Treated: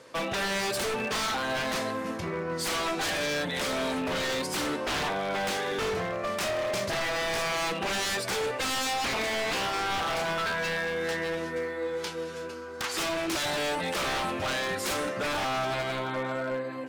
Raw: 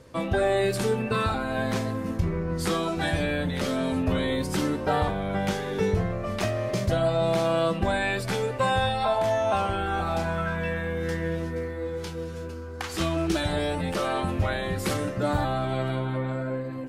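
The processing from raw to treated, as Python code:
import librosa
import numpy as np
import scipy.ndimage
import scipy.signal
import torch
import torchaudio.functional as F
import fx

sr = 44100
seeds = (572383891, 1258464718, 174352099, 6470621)

y = fx.weighting(x, sr, curve='A')
y = 10.0 ** (-28.5 / 20.0) * (np.abs((y / 10.0 ** (-28.5 / 20.0) + 3.0) % 4.0 - 2.0) - 1.0)
y = F.gain(torch.from_numpy(y), 4.0).numpy()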